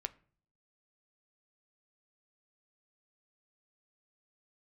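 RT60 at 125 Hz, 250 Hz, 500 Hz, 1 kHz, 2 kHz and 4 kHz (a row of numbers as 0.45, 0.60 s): 0.75, 0.70, 0.50, 0.40, 0.40, 0.30 s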